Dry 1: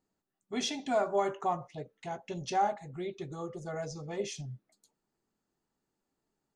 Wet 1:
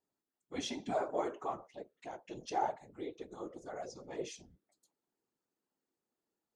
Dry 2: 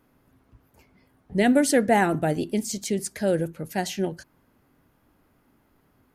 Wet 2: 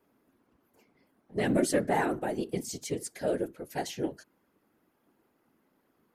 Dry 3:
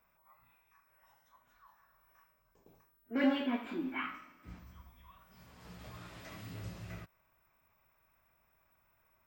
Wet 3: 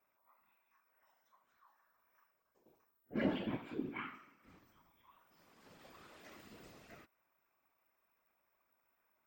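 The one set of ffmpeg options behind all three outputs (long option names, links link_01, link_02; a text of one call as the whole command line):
ffmpeg -i in.wav -af "lowshelf=frequency=180:width_type=q:width=1.5:gain=-13.5,acontrast=66,afftfilt=real='hypot(re,im)*cos(2*PI*random(0))':imag='hypot(re,im)*sin(2*PI*random(1))':win_size=512:overlap=0.75,volume=-7.5dB" out.wav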